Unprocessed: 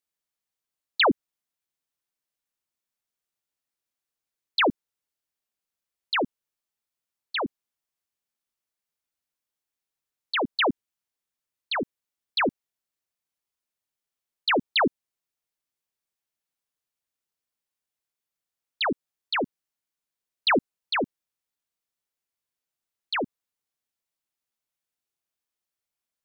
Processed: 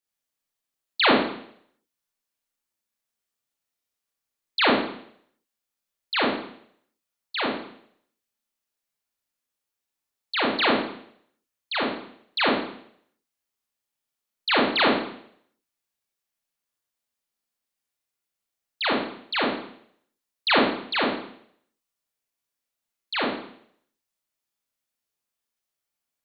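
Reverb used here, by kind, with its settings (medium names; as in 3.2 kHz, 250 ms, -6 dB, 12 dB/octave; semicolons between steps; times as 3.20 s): Schroeder reverb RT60 0.65 s, combs from 27 ms, DRR -4 dB; trim -2.5 dB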